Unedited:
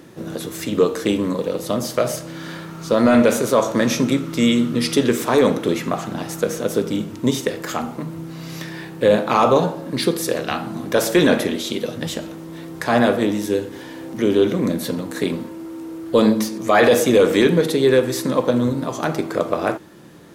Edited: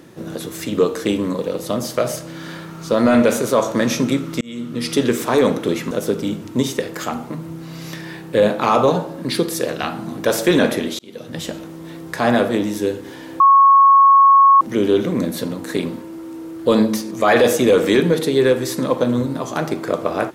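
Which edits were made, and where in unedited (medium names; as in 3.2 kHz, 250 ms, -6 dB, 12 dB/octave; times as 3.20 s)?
4.41–5.01 s: fade in
5.91–6.59 s: delete
11.67–12.17 s: fade in linear
14.08 s: add tone 1.1 kHz -6.5 dBFS 1.21 s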